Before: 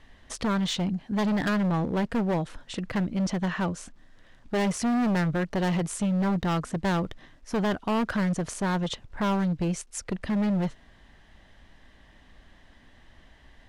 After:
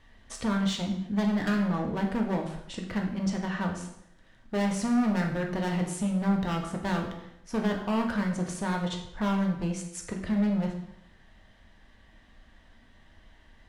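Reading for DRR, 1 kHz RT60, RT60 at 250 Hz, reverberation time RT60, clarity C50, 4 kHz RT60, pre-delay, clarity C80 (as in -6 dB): 1.0 dB, 0.75 s, 0.75 s, 0.75 s, 6.5 dB, 0.65 s, 3 ms, 9.5 dB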